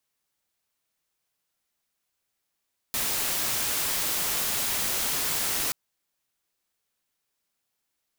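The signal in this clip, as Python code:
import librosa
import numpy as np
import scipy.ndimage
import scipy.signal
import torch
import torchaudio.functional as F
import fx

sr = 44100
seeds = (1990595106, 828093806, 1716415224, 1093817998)

y = fx.noise_colour(sr, seeds[0], length_s=2.78, colour='white', level_db=-27.5)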